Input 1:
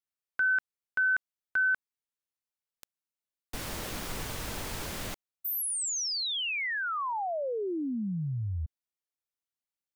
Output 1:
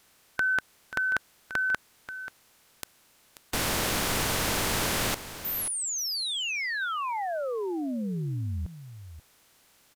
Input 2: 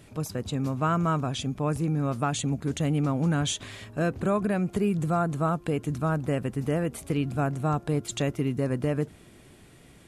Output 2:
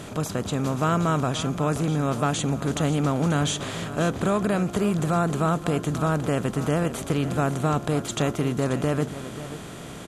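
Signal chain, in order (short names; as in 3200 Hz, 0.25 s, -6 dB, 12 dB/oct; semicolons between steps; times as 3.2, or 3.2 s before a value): per-bin compression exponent 0.6; echo 0.535 s -13 dB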